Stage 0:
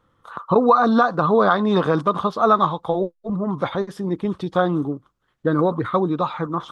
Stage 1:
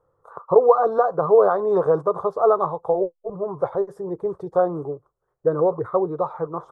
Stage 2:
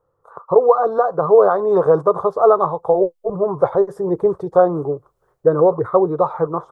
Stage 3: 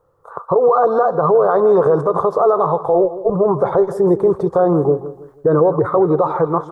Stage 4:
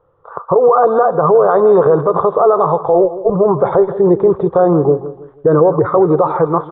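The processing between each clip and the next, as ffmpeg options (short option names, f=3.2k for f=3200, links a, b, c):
-af "firequalizer=gain_entry='entry(160,0);entry(230,-16);entry(410,11);entry(2900,-26);entry(4700,-15);entry(7500,-5)':delay=0.05:min_phase=1,volume=-6.5dB"
-af "dynaudnorm=f=210:g=3:m=15.5dB,volume=-1dB"
-af "alimiter=limit=-13.5dB:level=0:latency=1:release=59,aecho=1:1:162|324|486:0.2|0.0718|0.0259,volume=7.5dB"
-af "aresample=8000,aresample=44100,volume=3dB"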